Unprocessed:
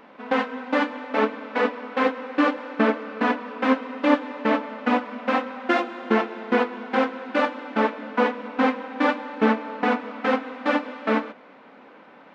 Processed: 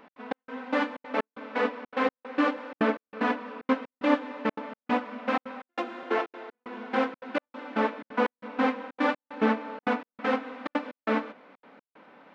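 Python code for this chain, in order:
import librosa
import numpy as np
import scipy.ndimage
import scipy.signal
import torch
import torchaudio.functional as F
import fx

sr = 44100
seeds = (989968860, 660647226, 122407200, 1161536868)

y = fx.ellip_highpass(x, sr, hz=270.0, order=4, stop_db=40, at=(6.03, 6.55))
y = fx.step_gate(y, sr, bpm=187, pattern='x.xx..xxxxx', floor_db=-60.0, edge_ms=4.5)
y = F.gain(torch.from_numpy(y), -4.5).numpy()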